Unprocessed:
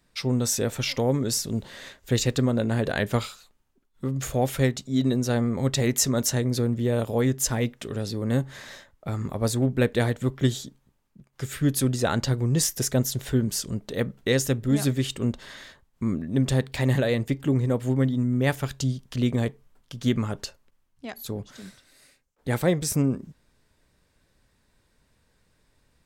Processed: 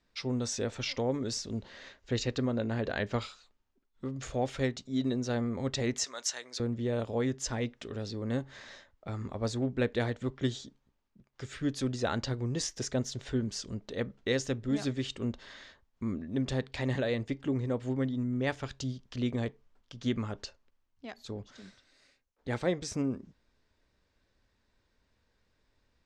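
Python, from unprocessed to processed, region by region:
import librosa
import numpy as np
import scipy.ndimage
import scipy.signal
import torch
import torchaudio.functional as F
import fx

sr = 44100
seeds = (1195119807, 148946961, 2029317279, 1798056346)

y = fx.chain(x, sr, fx.peak_eq(hz=9800.0, db=-12.5, octaves=0.42),
    fx.notch(hz=3500.0, q=24.0), at=(1.58, 3.22))
y = fx.chain(y, sr, fx.highpass(hz=1000.0, slope=12),
    fx.high_shelf(hz=6100.0, db=7.5), at=(6.04, 6.6))
y = scipy.signal.sosfilt(scipy.signal.butter(4, 6400.0, 'lowpass', fs=sr, output='sos'), y)
y = fx.peak_eq(y, sr, hz=150.0, db=-9.0, octaves=0.41)
y = F.gain(torch.from_numpy(y), -6.5).numpy()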